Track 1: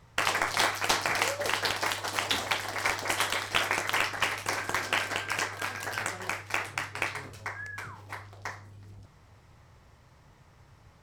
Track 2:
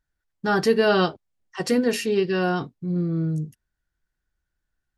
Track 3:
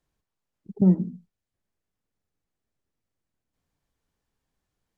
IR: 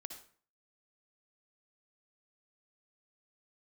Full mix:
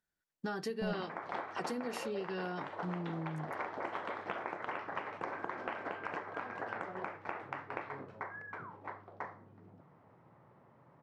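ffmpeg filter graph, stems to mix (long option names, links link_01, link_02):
-filter_complex "[0:a]lowpass=1100,adelay=750,volume=0.5dB[link_01];[1:a]volume=-5.5dB[link_02];[2:a]aeval=exprs='0.178*(abs(mod(val(0)/0.178+3,4)-2)-1)':channel_layout=same,volume=-18dB[link_03];[link_01][link_02]amix=inputs=2:normalize=0,highpass=frequency=150:width=0.5412,highpass=frequency=150:width=1.3066,acompressor=threshold=-35dB:ratio=12,volume=0dB[link_04];[link_03][link_04]amix=inputs=2:normalize=0"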